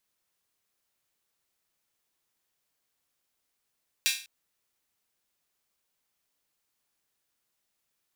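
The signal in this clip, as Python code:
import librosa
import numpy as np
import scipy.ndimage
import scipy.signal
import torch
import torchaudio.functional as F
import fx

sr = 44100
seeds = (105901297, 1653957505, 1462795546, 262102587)

y = fx.drum_hat_open(sr, length_s=0.2, from_hz=2600.0, decay_s=0.39)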